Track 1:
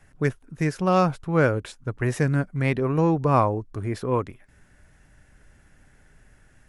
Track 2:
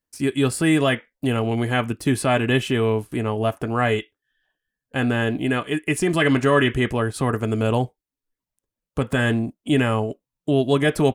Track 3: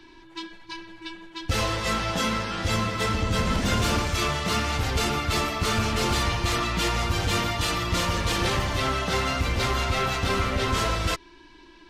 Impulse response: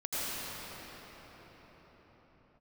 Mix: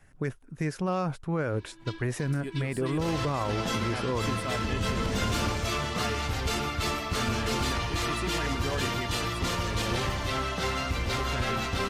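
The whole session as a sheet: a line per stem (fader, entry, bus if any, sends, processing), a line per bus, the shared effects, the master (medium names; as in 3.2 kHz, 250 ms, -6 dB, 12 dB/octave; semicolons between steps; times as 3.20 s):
-2.5 dB, 0.00 s, no send, none
-15.5 dB, 2.20 s, no send, upward compressor, threshold -29 dBFS
-4.5 dB, 1.50 s, no send, none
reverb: none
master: peak limiter -20 dBFS, peak gain reduction 10.5 dB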